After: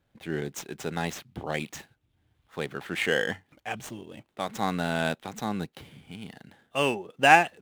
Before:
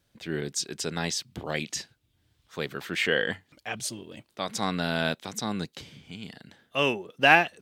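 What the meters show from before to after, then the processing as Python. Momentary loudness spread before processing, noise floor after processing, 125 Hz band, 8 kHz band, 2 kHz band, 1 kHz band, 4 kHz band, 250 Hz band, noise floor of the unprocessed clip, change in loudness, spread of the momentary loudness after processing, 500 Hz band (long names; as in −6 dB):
19 LU, −73 dBFS, 0.0 dB, −6.0 dB, −1.0 dB, +3.0 dB, −4.0 dB, 0.0 dB, −72 dBFS, 0.0 dB, 19 LU, +0.5 dB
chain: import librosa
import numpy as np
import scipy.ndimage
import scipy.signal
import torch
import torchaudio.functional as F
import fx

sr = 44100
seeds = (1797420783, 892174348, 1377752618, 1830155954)

y = scipy.ndimage.median_filter(x, 9, mode='constant')
y = fx.peak_eq(y, sr, hz=800.0, db=5.5, octaves=0.22)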